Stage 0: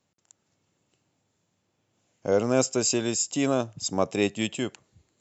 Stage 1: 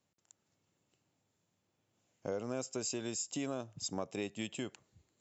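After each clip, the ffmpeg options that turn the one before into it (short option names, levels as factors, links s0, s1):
-af "acompressor=threshold=0.0355:ratio=4,volume=0.473"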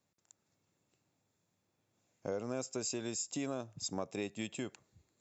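-af "bandreject=f=3000:w=10"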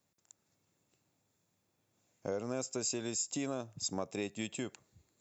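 -af "crystalizer=i=0.5:c=0,volume=1.12"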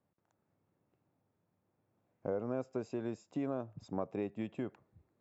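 -af "lowpass=1300,volume=1.12"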